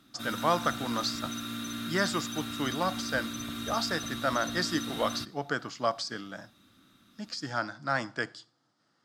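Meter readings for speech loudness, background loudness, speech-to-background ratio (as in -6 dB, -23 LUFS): -32.5 LUFS, -36.5 LUFS, 4.0 dB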